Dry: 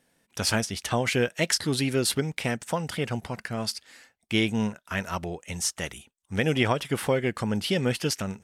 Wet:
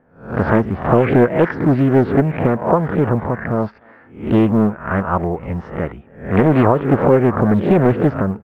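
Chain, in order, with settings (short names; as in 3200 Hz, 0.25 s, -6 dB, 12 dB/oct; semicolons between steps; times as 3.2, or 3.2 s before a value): spectral swells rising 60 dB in 0.44 s; LPF 1400 Hz 24 dB/oct; short-mantissa float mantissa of 6-bit; speakerphone echo 0.3 s, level -28 dB; maximiser +13.5 dB; Doppler distortion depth 0.6 ms; gain -1 dB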